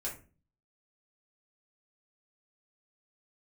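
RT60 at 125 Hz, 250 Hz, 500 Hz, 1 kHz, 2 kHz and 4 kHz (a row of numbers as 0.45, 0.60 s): 0.65, 0.55, 0.40, 0.30, 0.30, 0.20 s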